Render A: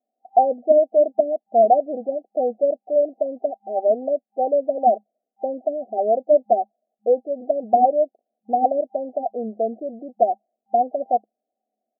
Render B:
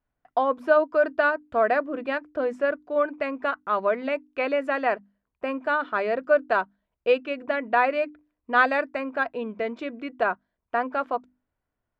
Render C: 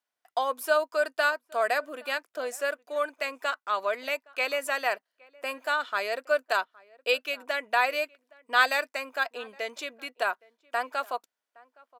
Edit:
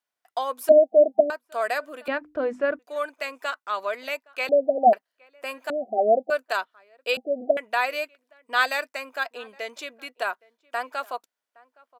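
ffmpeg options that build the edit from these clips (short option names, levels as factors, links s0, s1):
-filter_complex "[0:a]asplit=4[s0][s1][s2][s3];[2:a]asplit=6[s4][s5][s6][s7][s8][s9];[s4]atrim=end=0.692[s10];[s0]atrim=start=0.688:end=1.302[s11];[s5]atrim=start=1.298:end=2.082[s12];[1:a]atrim=start=2.078:end=2.792[s13];[s6]atrim=start=2.788:end=4.492[s14];[s1]atrim=start=4.488:end=4.932[s15];[s7]atrim=start=4.928:end=5.702[s16];[s2]atrim=start=5.698:end=6.302[s17];[s8]atrim=start=6.298:end=7.172[s18];[s3]atrim=start=7.168:end=7.572[s19];[s9]atrim=start=7.568[s20];[s10][s11]acrossfade=d=0.004:c1=hsin:c2=hsin[s21];[s21][s12]acrossfade=d=0.004:c1=hsin:c2=hsin[s22];[s22][s13]acrossfade=d=0.004:c1=hsin:c2=hsin[s23];[s23][s14]acrossfade=d=0.004:c1=hsin:c2=hsin[s24];[s24][s15]acrossfade=d=0.004:c1=hsin:c2=hsin[s25];[s25][s16]acrossfade=d=0.004:c1=hsin:c2=hsin[s26];[s26][s17]acrossfade=d=0.004:c1=hsin:c2=hsin[s27];[s27][s18]acrossfade=d=0.004:c1=hsin:c2=hsin[s28];[s28][s19]acrossfade=d=0.004:c1=hsin:c2=hsin[s29];[s29][s20]acrossfade=d=0.004:c1=hsin:c2=hsin"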